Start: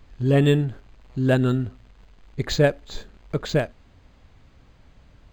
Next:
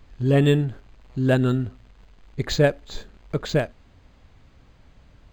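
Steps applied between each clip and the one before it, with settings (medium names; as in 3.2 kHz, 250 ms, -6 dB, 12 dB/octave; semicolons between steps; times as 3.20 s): no audible change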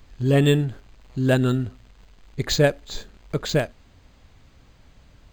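treble shelf 4.4 kHz +8.5 dB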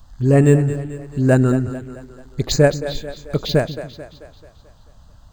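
touch-sensitive phaser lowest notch 350 Hz, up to 3.4 kHz, full sweep at -20 dBFS; two-band feedback delay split 320 Hz, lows 145 ms, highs 219 ms, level -12 dB; trim +5 dB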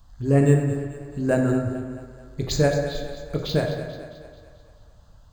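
plate-style reverb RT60 1.4 s, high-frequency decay 0.55×, DRR 2.5 dB; trim -7 dB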